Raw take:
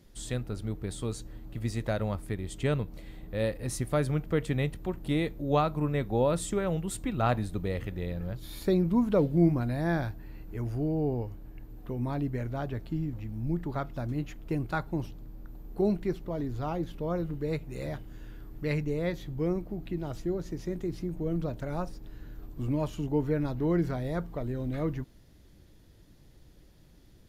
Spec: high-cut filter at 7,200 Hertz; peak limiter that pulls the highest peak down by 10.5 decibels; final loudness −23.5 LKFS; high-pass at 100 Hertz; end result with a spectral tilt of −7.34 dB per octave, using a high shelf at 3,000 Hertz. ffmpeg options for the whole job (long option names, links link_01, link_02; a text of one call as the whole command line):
ffmpeg -i in.wav -af "highpass=100,lowpass=7200,highshelf=frequency=3000:gain=-8.5,volume=11.5dB,alimiter=limit=-12.5dB:level=0:latency=1" out.wav